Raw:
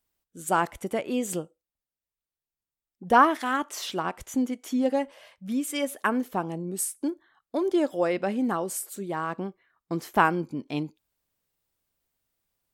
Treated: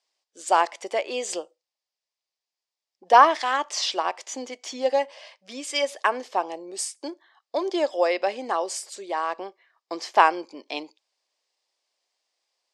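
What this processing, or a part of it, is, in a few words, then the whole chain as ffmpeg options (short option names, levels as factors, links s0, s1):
phone speaker on a table: -af "highpass=f=450:w=0.5412,highpass=f=450:w=1.3066,equalizer=f=450:t=q:w=4:g=-4,equalizer=f=1400:t=q:w=4:g=-9,equalizer=f=4900:t=q:w=4:g=8,lowpass=f=7200:w=0.5412,lowpass=f=7200:w=1.3066,volume=2.11"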